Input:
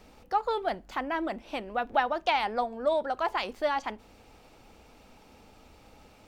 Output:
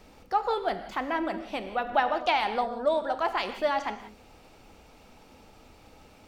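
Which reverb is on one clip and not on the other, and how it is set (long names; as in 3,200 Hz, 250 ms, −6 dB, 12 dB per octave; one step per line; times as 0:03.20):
reverb whose tail is shaped and stops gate 210 ms flat, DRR 8.5 dB
level +1 dB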